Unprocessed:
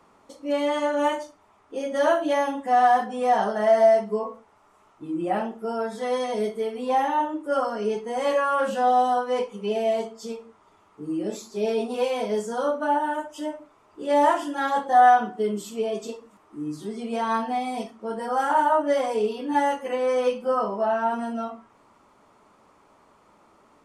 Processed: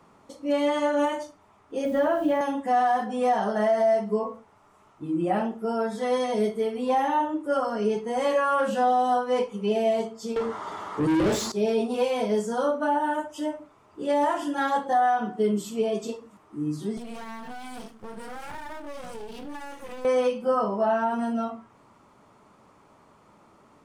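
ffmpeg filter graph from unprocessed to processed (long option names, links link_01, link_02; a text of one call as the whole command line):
ffmpeg -i in.wav -filter_complex "[0:a]asettb=1/sr,asplit=3[link_01][link_02][link_03];[link_01]atrim=end=1.854[link_04];[link_02]atrim=start=1.85:end=2.41,asetpts=PTS-STARTPTS,afade=type=in:duration=0.004:curve=qsin,afade=type=out:start_time=0.556:duration=0.004:curve=qsin,acrossover=split=3600[link_05][link_06];[link_06]acompressor=threshold=-53dB:ratio=4:attack=1:release=60[link_07];[link_05][link_07]amix=inputs=2:normalize=0,aemphasis=mode=reproduction:type=bsi,acrusher=bits=7:mix=0:aa=0.5[link_08];[link_03]atrim=start=2.406[link_09];[link_04][link_08]acrossfade=duration=0.004:curve1=hsin:curve2=qsin[link_10];[link_10][link_09]acrossfade=duration=0.004:curve1=qsin:curve2=hsin,asettb=1/sr,asplit=3[link_11][link_12][link_13];[link_11]atrim=end=10.364[link_14];[link_12]atrim=start=10.36:end=11.52,asetpts=PTS-STARTPTS,afade=type=in:duration=0.004:curve=qsin,afade=type=out:start_time=1.156:duration=0.004:curve=qsin,equalizer=frequency=2500:width_type=o:width=0.2:gain=-13,asplit=2[link_15][link_16];[link_16]highpass=frequency=720:poles=1,volume=32dB,asoftclip=type=tanh:threshold=-17.5dB[link_17];[link_15][link_17]amix=inputs=2:normalize=0,lowpass=frequency=3100:poles=1,volume=-6dB[link_18];[link_13]atrim=start=11.516[link_19];[link_14][link_18]acrossfade=duration=0.004:curve1=hsin:curve2=qsin[link_20];[link_20][link_19]acrossfade=duration=0.004:curve1=qsin:curve2=hsin,asettb=1/sr,asplit=3[link_21][link_22][link_23];[link_21]atrim=end=16.974[link_24];[link_22]atrim=start=16.97:end=20.05,asetpts=PTS-STARTPTS,afade=type=in:duration=0.004:curve=qsin,afade=type=out:start_time=3.076:duration=0.004:curve=qsin,aeval=exprs='max(val(0),0)':channel_layout=same,highshelf=frequency=6300:gain=9.5,acompressor=threshold=-34dB:ratio=6:attack=3.2:release=140:knee=1:detection=peak[link_25];[link_23]atrim=start=20.046[link_26];[link_24][link_25]acrossfade=duration=0.004:curve1=hsin:curve2=qsin[link_27];[link_27][link_26]acrossfade=duration=0.004:curve1=qsin:curve2=hsin,equalizer=frequency=130:width_type=o:width=1.5:gain=7.5,alimiter=limit=-15dB:level=0:latency=1:release=162" out.wav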